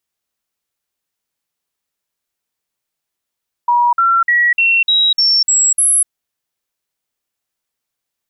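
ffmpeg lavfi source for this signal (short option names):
-f lavfi -i "aevalsrc='0.355*clip(min(mod(t,0.3),0.25-mod(t,0.3))/0.005,0,1)*sin(2*PI*961*pow(2,floor(t/0.3)/2)*mod(t,0.3))':d=2.4:s=44100"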